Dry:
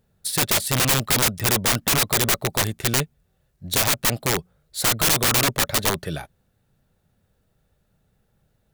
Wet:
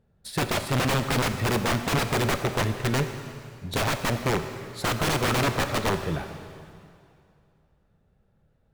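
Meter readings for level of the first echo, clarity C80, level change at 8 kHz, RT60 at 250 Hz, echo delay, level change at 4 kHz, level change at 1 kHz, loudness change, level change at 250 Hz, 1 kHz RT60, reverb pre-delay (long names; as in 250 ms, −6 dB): no echo audible, 9.0 dB, −13.0 dB, 2.4 s, no echo audible, −8.0 dB, −1.0 dB, −6.0 dB, +0.5 dB, 2.4 s, 6 ms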